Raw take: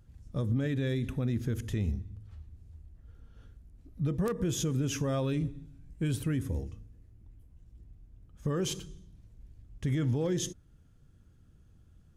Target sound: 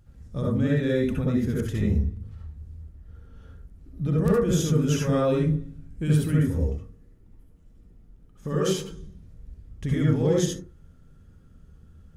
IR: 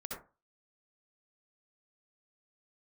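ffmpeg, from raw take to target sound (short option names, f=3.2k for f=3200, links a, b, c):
-filter_complex "[0:a]asettb=1/sr,asplit=3[a][b][c];[a]atrim=end=6.764[d];[b]atrim=start=6.76:end=8.91,asetpts=PTS-STARTPTS,afade=t=in:d=0.004:c=qsin,afade=t=out:st=2.146:d=0.004:c=qsin,equalizer=f=70:w=1:g=-12.5[e];[c]atrim=start=8.906[f];[d][e]acrossfade=d=0.004:c1=hsin:c2=qsin[g];[g][f]acrossfade=d=0.004:c1=qsin:c2=hsin[h];[1:a]atrim=start_sample=2205[i];[h][i]afir=irnorm=-1:irlink=0,volume=7.5dB"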